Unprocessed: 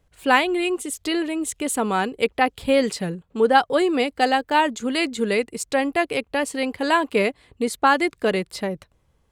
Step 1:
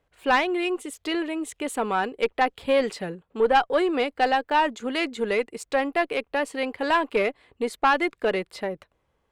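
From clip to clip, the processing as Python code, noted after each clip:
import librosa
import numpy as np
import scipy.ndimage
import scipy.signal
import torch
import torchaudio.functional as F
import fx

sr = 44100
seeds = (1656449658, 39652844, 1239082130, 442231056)

y = fx.bass_treble(x, sr, bass_db=-10, treble_db=-10)
y = fx.tube_stage(y, sr, drive_db=10.0, bias=0.3)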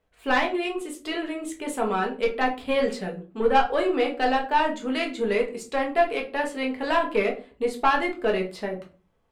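y = fx.room_shoebox(x, sr, seeds[0], volume_m3=190.0, walls='furnished', distance_m=1.5)
y = F.gain(torch.from_numpy(y), -3.5).numpy()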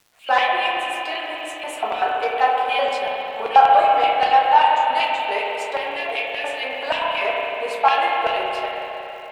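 y = fx.filter_lfo_highpass(x, sr, shape='square', hz=5.2, low_hz=720.0, high_hz=2700.0, q=3.2)
y = fx.rev_spring(y, sr, rt60_s=3.5, pass_ms=(32, 46), chirp_ms=55, drr_db=-2.0)
y = fx.dmg_crackle(y, sr, seeds[1], per_s=370.0, level_db=-44.0)
y = F.gain(torch.from_numpy(y), -1.0).numpy()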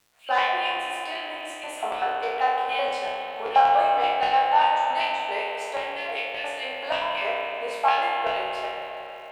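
y = fx.spec_trails(x, sr, decay_s=0.72)
y = F.gain(torch.from_numpy(y), -7.0).numpy()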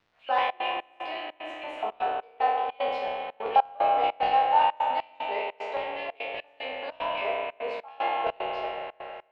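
y = fx.dynamic_eq(x, sr, hz=1600.0, q=2.3, threshold_db=-41.0, ratio=4.0, max_db=-6)
y = fx.step_gate(y, sr, bpm=150, pattern='xxxxx.xx..xxx.', floor_db=-24.0, edge_ms=4.5)
y = fx.air_absorb(y, sr, metres=250.0)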